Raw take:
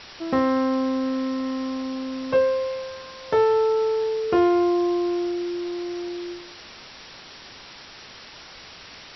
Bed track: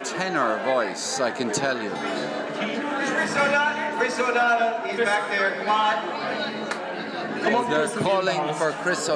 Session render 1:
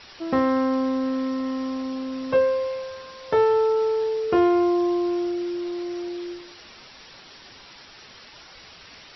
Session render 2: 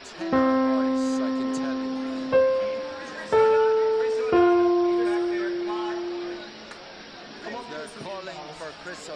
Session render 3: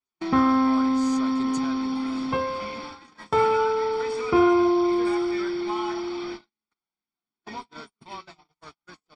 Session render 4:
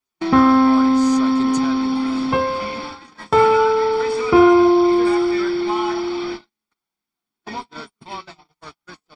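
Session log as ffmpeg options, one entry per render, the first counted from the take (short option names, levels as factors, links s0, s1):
-af "afftdn=nr=6:nf=-44"
-filter_complex "[1:a]volume=0.2[s0];[0:a][s0]amix=inputs=2:normalize=0"
-af "agate=range=0.002:threshold=0.0224:ratio=16:detection=peak,aecho=1:1:0.9:0.77"
-af "volume=2.24"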